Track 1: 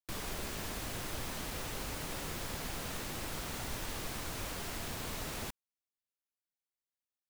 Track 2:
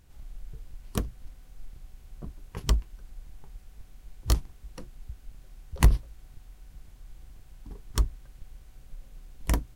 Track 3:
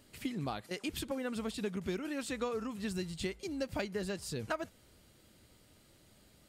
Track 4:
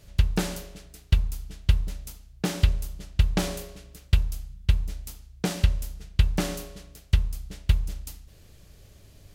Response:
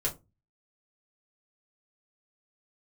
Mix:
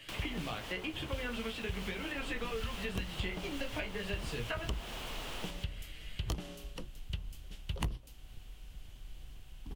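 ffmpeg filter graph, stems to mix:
-filter_complex "[0:a]asplit=2[a][b];[b]highpass=f=720:p=1,volume=15dB,asoftclip=type=tanh:threshold=-31dB[c];[a][c]amix=inputs=2:normalize=0,lowpass=f=7.4k:p=1,volume=-6dB,volume=-3.5dB,asplit=2[d][e];[e]volume=-10.5dB[f];[1:a]adelay=2000,volume=-1.5dB[g];[2:a]equalizer=f=2.1k:w=1.1:g=15,flanger=delay=15:depth=2.6:speed=0.98,volume=0dB,asplit=2[h][i];[i]volume=-6dB[j];[3:a]volume=-13.5dB[k];[4:a]atrim=start_sample=2205[l];[j][l]afir=irnorm=-1:irlink=0[m];[f]aecho=0:1:139:1[n];[d][g][h][k][m][n]amix=inputs=6:normalize=0,equalizer=f=3k:t=o:w=0.55:g=12,acrossover=split=110|1200[o][p][q];[o]acompressor=threshold=-38dB:ratio=4[r];[p]acompressor=threshold=-39dB:ratio=4[s];[q]acompressor=threshold=-45dB:ratio=4[t];[r][s][t]amix=inputs=3:normalize=0"

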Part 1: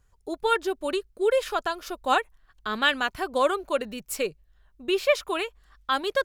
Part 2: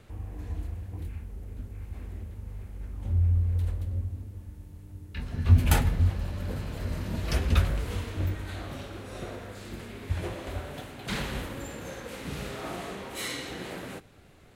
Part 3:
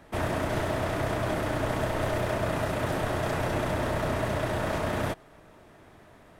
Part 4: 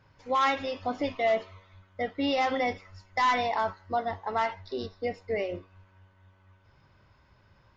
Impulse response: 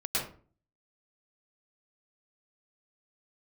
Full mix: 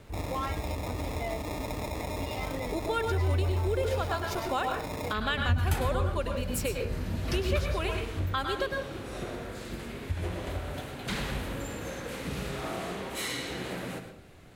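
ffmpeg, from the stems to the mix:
-filter_complex "[0:a]acompressor=threshold=-38dB:ratio=1.5,adelay=2450,volume=3dB,asplit=2[a][b];[b]volume=-8dB[c];[1:a]volume=0.5dB,asplit=2[d][e];[e]volume=-13.5dB[f];[2:a]highpass=160,aecho=1:1:6.9:0.93,acrusher=samples=29:mix=1:aa=0.000001,volume=-8dB[g];[3:a]asplit=2[h][i];[i]adelay=6.3,afreqshift=-1.7[j];[h][j]amix=inputs=2:normalize=1,volume=-5.5dB[k];[4:a]atrim=start_sample=2205[l];[c][f]amix=inputs=2:normalize=0[m];[m][l]afir=irnorm=-1:irlink=0[n];[a][d][g][k][n]amix=inputs=5:normalize=0,acompressor=threshold=-31dB:ratio=2"

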